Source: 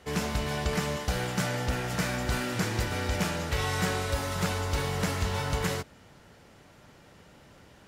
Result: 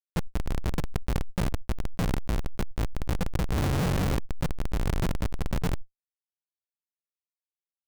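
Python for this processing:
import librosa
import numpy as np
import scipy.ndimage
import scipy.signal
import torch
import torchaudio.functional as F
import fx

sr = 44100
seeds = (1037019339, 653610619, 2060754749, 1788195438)

y = fx.halfwave_hold(x, sr, at=(3.31, 4.14))
y = np.repeat(scipy.signal.resample_poly(y, 1, 8), 8)[:len(y)]
y = fx.lowpass(y, sr, hz=8100.0, slope=12, at=(5.01, 5.51))
y = fx.echo_feedback(y, sr, ms=166, feedback_pct=26, wet_db=-8.5)
y = fx.room_shoebox(y, sr, seeds[0], volume_m3=2000.0, walls='furnished', distance_m=0.67)
y = fx.schmitt(y, sr, flips_db=-22.0)
y = fx.env_flatten(y, sr, amount_pct=100)
y = F.gain(torch.from_numpy(y), 3.0).numpy()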